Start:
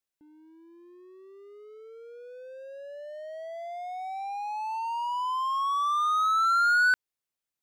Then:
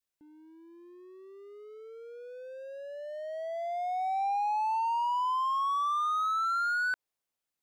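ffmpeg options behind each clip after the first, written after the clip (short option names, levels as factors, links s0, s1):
-af "adynamicequalizer=threshold=0.01:dfrequency=690:dqfactor=0.82:tfrequency=690:tqfactor=0.82:attack=5:release=100:ratio=0.375:range=3:mode=boostabove:tftype=bell,alimiter=level_in=1.19:limit=0.0631:level=0:latency=1:release=70,volume=0.841"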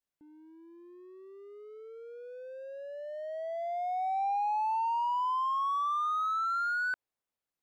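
-af "highshelf=f=2700:g=-8"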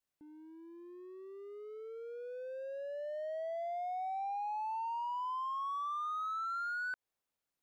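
-af "acompressor=threshold=0.0126:ratio=6,volume=1.12"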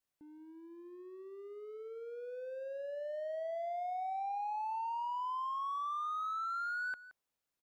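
-af "aecho=1:1:172:0.15"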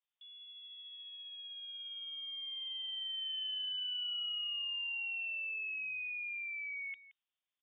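-af "lowpass=f=3100:t=q:w=0.5098,lowpass=f=3100:t=q:w=0.6013,lowpass=f=3100:t=q:w=0.9,lowpass=f=3100:t=q:w=2.563,afreqshift=-3700,aexciter=amount=1.7:drive=3.9:freq=2900,volume=0.596"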